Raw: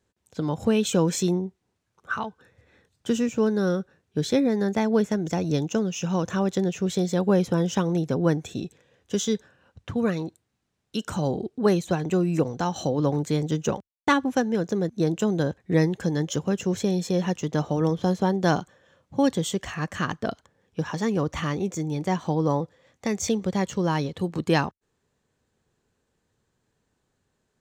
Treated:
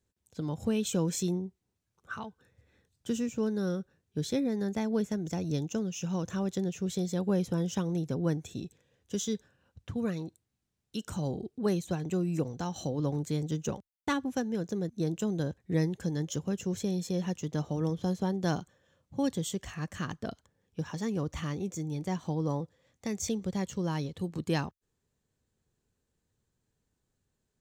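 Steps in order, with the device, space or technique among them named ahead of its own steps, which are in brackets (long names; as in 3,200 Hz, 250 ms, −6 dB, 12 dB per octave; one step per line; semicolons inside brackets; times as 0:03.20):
smiley-face EQ (low-shelf EQ 95 Hz +6.5 dB; parametric band 1,100 Hz −4.5 dB 3 octaves; high-shelf EQ 8,000 Hz +5.5 dB)
level −7 dB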